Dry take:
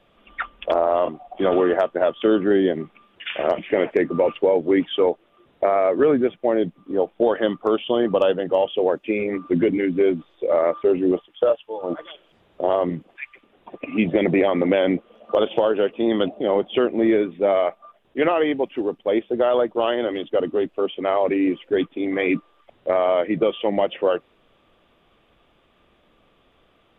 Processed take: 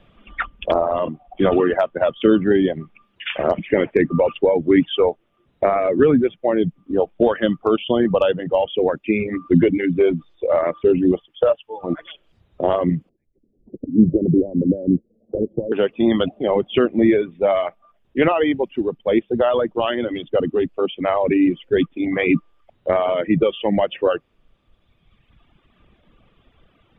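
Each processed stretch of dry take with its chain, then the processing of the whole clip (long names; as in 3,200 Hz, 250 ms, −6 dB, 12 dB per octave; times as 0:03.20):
0:13.09–0:15.72: inverse Chebyshev low-pass filter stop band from 1,100 Hz, stop band 50 dB + one half of a high-frequency compander encoder only
whole clip: parametric band 2,700 Hz +3.5 dB 2.4 octaves; reverb reduction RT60 1.8 s; bass and treble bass +12 dB, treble −5 dB; level +1 dB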